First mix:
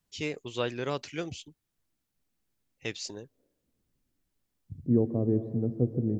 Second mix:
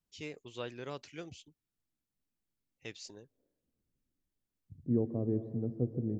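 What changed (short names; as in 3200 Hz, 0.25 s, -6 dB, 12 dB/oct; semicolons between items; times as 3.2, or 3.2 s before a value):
first voice -10.0 dB; second voice -6.0 dB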